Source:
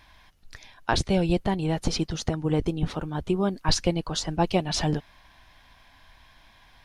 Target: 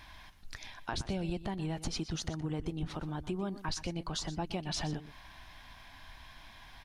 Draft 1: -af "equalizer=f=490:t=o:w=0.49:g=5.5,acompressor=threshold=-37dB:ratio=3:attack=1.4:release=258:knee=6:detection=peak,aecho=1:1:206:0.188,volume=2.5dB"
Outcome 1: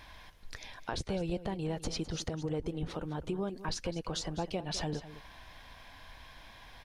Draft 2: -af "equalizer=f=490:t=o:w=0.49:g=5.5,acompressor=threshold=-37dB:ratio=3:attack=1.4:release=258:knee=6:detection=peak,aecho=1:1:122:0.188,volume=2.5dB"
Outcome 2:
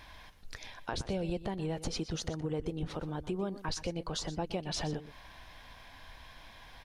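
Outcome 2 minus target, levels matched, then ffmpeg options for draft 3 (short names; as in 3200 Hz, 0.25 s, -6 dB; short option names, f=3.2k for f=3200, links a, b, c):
500 Hz band +4.0 dB
-af "equalizer=f=490:t=o:w=0.49:g=-5,acompressor=threshold=-37dB:ratio=3:attack=1.4:release=258:knee=6:detection=peak,aecho=1:1:122:0.188,volume=2.5dB"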